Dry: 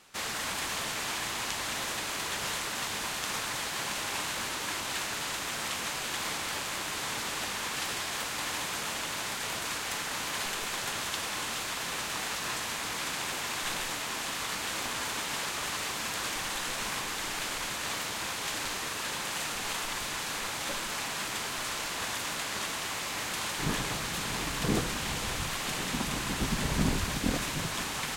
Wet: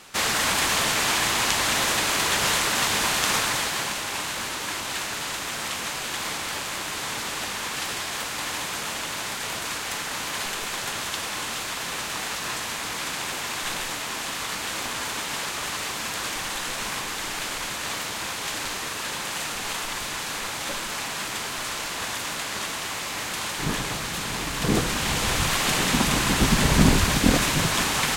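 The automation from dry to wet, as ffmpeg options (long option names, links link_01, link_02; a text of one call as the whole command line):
ffmpeg -i in.wav -af "volume=17.5dB,afade=type=out:start_time=3.3:duration=0.7:silence=0.446684,afade=type=in:start_time=24.49:duration=1.05:silence=0.473151" out.wav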